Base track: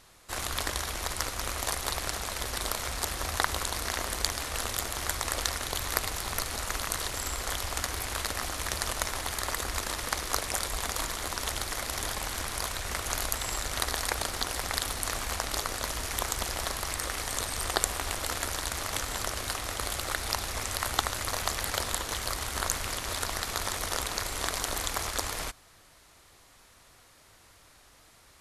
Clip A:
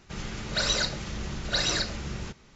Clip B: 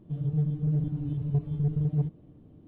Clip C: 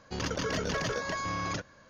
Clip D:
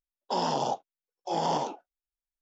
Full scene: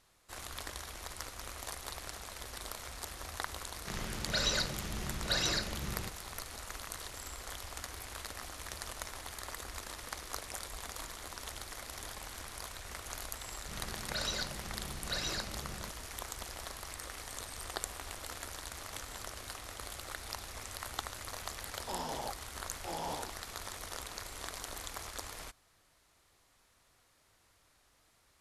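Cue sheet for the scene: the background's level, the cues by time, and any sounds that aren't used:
base track −11.5 dB
0:03.77: mix in A −5.5 dB
0:13.58: mix in A −10.5 dB
0:21.57: mix in D −12 dB
not used: B, C

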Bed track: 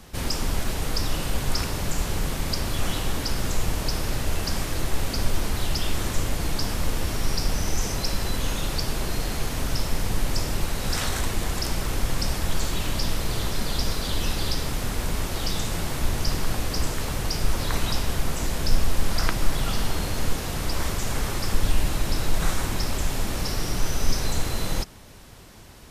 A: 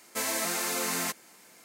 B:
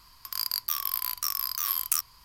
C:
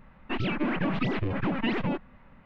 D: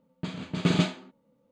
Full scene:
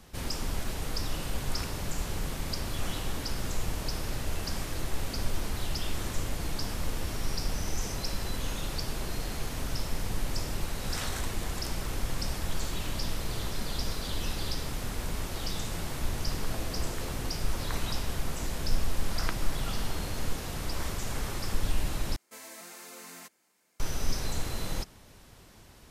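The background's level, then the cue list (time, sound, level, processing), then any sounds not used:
bed track −7 dB
0:16.25: mix in A −7.5 dB + Butterworth low-pass 650 Hz
0:22.16: overwrite with A −16 dB
not used: B, C, D

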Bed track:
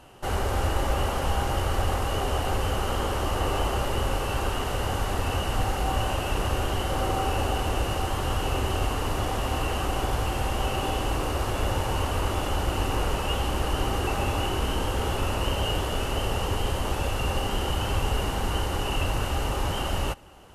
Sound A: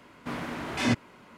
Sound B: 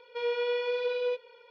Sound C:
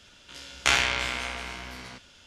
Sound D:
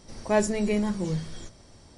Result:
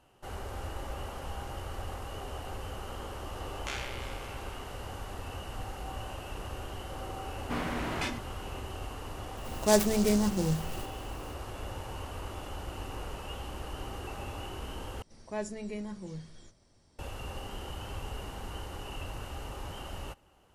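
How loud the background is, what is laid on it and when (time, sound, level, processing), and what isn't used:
bed track −13.5 dB
0:03.01: mix in C −17 dB
0:07.24: mix in A −2.5 dB + compressor whose output falls as the input rises −31 dBFS
0:09.37: mix in D −0.5 dB + short delay modulated by noise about 5,900 Hz, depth 0.079 ms
0:15.02: overwrite with D −13 dB
not used: B

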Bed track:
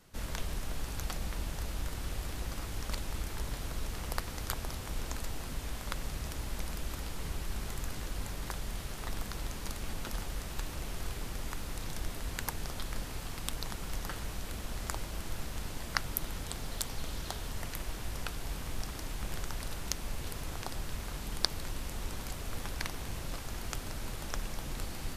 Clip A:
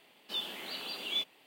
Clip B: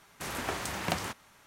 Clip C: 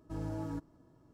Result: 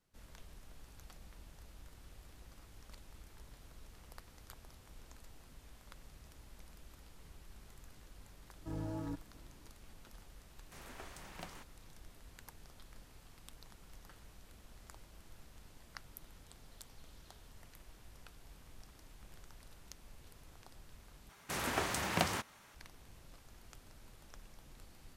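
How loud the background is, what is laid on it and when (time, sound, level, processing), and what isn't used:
bed track −18.5 dB
0:08.56: mix in C −2.5 dB
0:10.51: mix in B −17.5 dB
0:21.29: overwrite with B −1 dB
not used: A

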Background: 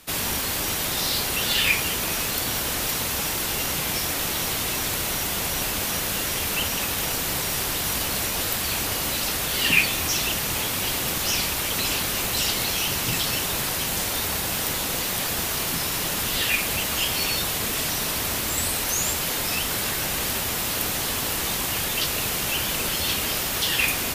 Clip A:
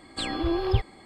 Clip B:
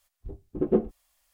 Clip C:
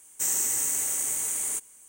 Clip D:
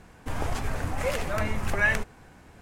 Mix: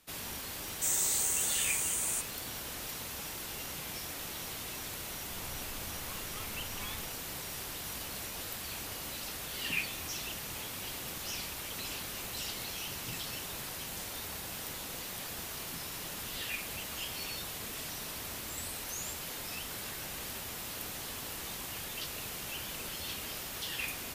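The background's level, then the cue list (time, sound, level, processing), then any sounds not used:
background −15 dB
0:00.62: mix in C −3.5 dB + elliptic high-pass filter 350 Hz
0:05.03: mix in D −17.5 dB + lower of the sound and its delayed copy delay 0.89 ms
not used: A, B

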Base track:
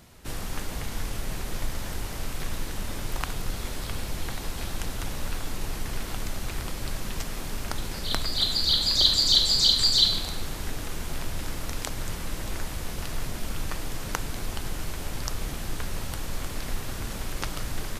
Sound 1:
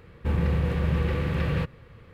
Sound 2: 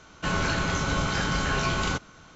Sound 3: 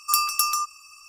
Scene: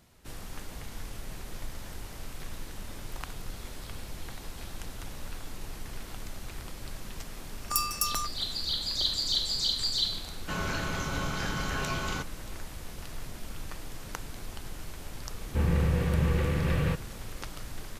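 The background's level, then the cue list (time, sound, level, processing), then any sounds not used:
base track −8.5 dB
0:07.62: mix in 3 −6.5 dB + parametric band 2,000 Hz −6 dB 1.1 octaves
0:10.25: mix in 2 −6.5 dB
0:15.30: mix in 1 −1.5 dB

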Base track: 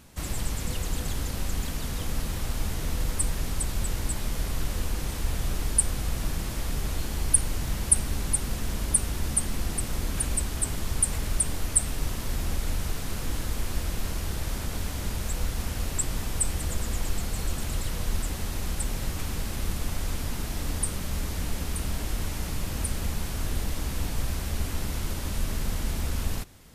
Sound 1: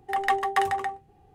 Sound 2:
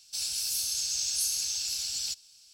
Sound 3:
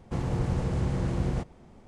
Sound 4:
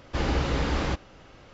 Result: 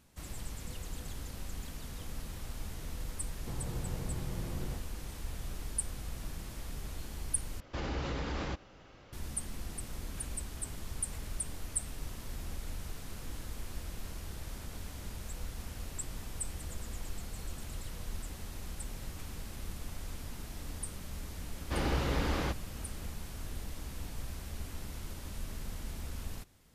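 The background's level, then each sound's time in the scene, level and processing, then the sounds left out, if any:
base track −12 dB
0:03.35: mix in 3 −12 dB
0:07.60: overwrite with 4 −5.5 dB + brickwall limiter −22 dBFS
0:21.57: mix in 4 −5.5 dB
not used: 1, 2

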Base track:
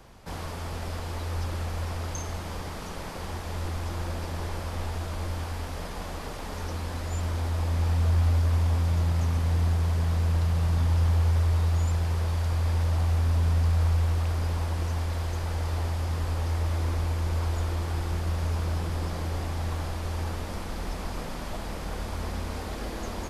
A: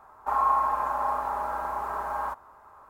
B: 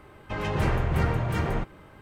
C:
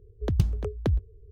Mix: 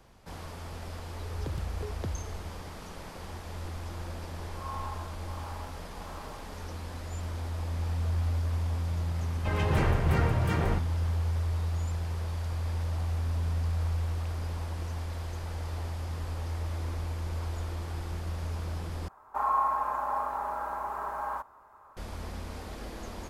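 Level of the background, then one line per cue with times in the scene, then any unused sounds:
base track −6.5 dB
0:01.18: mix in C −15.5 dB + envelope flattener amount 70%
0:04.19: mix in A −14.5 dB + tremolo along a rectified sine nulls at 1.5 Hz
0:09.15: mix in B −1.5 dB
0:19.08: overwrite with A −3.5 dB

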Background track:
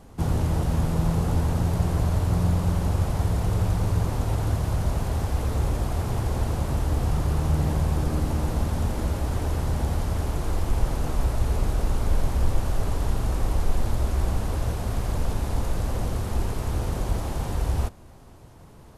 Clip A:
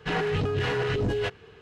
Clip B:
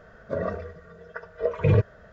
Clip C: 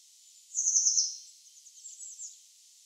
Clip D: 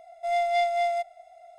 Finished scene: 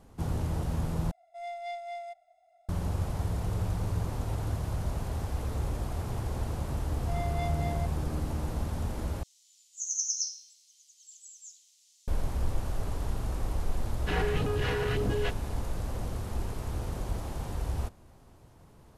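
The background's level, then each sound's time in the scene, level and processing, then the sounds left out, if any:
background track −7.5 dB
0:01.11: overwrite with D −14 dB
0:06.84: mix in D −12.5 dB
0:09.23: overwrite with C −5.5 dB
0:14.01: mix in A −4 dB
not used: B

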